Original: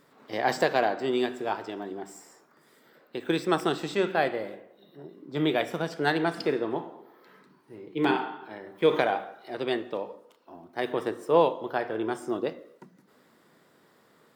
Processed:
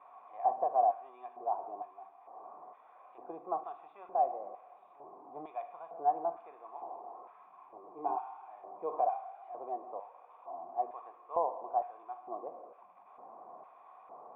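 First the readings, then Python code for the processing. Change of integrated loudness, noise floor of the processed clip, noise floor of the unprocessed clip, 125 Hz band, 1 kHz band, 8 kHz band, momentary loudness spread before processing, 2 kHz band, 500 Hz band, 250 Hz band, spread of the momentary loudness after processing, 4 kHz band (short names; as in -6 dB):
-8.5 dB, -59 dBFS, -62 dBFS, under -30 dB, -2.0 dB, n/a, 16 LU, under -30 dB, -11.5 dB, -24.0 dB, 21 LU, under -40 dB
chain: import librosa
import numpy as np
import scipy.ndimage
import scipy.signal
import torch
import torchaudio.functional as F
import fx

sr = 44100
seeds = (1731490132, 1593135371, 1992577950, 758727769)

y = x + 0.5 * 10.0 ** (-32.5 / 20.0) * np.sign(x)
y = fx.filter_lfo_bandpass(y, sr, shape='square', hz=1.1, low_hz=510.0, high_hz=2700.0, q=0.83)
y = fx.formant_cascade(y, sr, vowel='a')
y = y * librosa.db_to_amplitude(4.0)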